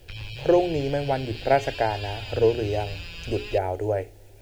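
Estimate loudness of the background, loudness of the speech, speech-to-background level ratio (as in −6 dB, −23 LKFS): −37.0 LKFS, −25.5 LKFS, 11.5 dB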